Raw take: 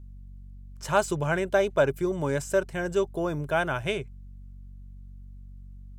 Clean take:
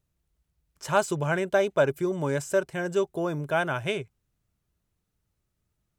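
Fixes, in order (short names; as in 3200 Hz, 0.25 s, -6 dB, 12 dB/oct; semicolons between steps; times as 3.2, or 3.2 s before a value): de-hum 47.3 Hz, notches 5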